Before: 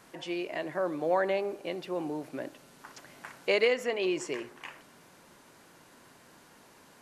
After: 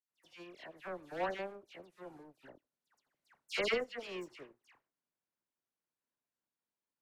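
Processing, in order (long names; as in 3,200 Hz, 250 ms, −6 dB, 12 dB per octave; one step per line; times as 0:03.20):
power curve on the samples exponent 2
all-pass dispersion lows, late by 102 ms, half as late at 2,300 Hz
level −1.5 dB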